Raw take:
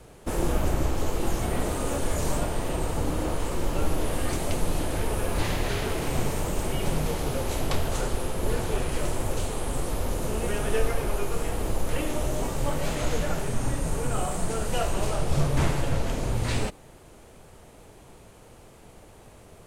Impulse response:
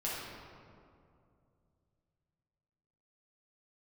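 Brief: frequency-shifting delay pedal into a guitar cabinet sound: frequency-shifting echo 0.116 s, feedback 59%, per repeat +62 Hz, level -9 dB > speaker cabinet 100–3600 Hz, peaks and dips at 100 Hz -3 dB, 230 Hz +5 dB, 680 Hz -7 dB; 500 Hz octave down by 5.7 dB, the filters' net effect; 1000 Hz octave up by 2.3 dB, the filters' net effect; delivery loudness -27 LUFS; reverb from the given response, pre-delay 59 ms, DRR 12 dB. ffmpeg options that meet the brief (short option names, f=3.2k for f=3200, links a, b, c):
-filter_complex "[0:a]equalizer=f=500:t=o:g=-7,equalizer=f=1k:t=o:g=7,asplit=2[a][b];[1:a]atrim=start_sample=2205,adelay=59[c];[b][c]afir=irnorm=-1:irlink=0,volume=-16.5dB[d];[a][d]amix=inputs=2:normalize=0,asplit=8[e][f][g][h][i][j][k][l];[f]adelay=116,afreqshift=62,volume=-9dB[m];[g]adelay=232,afreqshift=124,volume=-13.6dB[n];[h]adelay=348,afreqshift=186,volume=-18.2dB[o];[i]adelay=464,afreqshift=248,volume=-22.7dB[p];[j]adelay=580,afreqshift=310,volume=-27.3dB[q];[k]adelay=696,afreqshift=372,volume=-31.9dB[r];[l]adelay=812,afreqshift=434,volume=-36.5dB[s];[e][m][n][o][p][q][r][s]amix=inputs=8:normalize=0,highpass=100,equalizer=f=100:t=q:w=4:g=-3,equalizer=f=230:t=q:w=4:g=5,equalizer=f=680:t=q:w=4:g=-7,lowpass=f=3.6k:w=0.5412,lowpass=f=3.6k:w=1.3066,volume=2.5dB"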